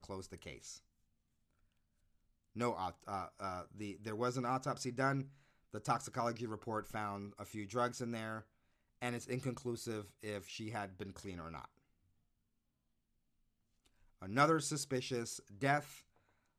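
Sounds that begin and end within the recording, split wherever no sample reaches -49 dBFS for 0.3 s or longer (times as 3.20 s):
2.56–5.27 s
5.74–8.41 s
9.02–11.65 s
14.22–15.98 s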